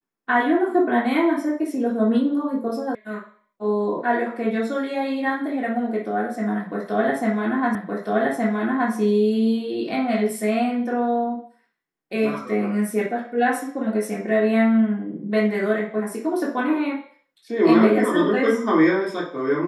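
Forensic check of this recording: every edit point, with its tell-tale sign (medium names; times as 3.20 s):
2.95 s: sound stops dead
7.75 s: repeat of the last 1.17 s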